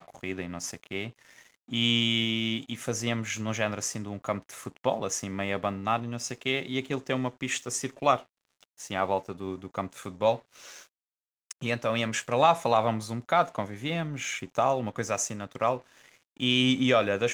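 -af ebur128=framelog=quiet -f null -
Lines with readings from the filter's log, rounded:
Integrated loudness:
  I:         -28.7 LUFS
  Threshold: -39.2 LUFS
Loudness range:
  LRA:         4.5 LU
  Threshold: -49.6 LUFS
  LRA low:   -31.8 LUFS
  LRA high:  -27.3 LUFS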